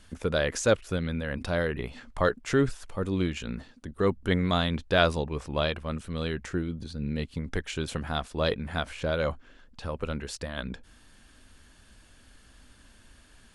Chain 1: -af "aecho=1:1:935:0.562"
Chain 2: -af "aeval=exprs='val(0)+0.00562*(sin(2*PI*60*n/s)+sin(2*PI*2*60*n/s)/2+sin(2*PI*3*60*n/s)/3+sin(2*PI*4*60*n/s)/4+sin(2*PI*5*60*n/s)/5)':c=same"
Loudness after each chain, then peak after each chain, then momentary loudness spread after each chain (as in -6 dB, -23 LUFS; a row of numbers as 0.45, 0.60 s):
-29.0, -29.5 LUFS; -6.5, -7.5 dBFS; 12, 23 LU